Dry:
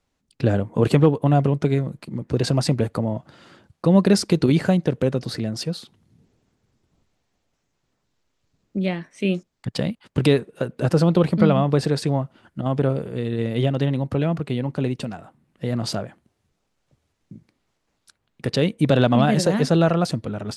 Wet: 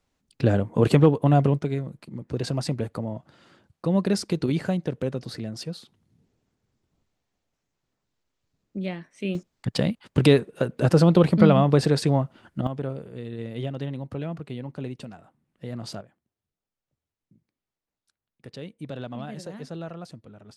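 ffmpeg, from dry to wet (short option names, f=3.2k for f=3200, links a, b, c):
-af "asetnsamples=n=441:p=0,asendcmd='1.59 volume volume -7dB;9.35 volume volume 0.5dB;12.67 volume volume -10dB;16.01 volume volume -18.5dB',volume=-1dB"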